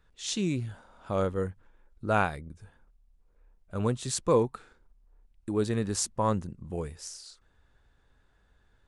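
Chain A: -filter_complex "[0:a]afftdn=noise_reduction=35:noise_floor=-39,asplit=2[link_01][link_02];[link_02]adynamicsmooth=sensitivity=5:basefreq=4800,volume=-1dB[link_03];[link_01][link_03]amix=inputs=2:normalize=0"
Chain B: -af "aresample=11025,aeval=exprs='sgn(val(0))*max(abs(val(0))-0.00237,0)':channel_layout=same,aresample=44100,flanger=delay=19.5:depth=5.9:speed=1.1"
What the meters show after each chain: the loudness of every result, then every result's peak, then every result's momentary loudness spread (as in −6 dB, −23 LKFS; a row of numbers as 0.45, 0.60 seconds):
−25.5, −34.0 LKFS; −6.5, −13.5 dBFS; 14, 15 LU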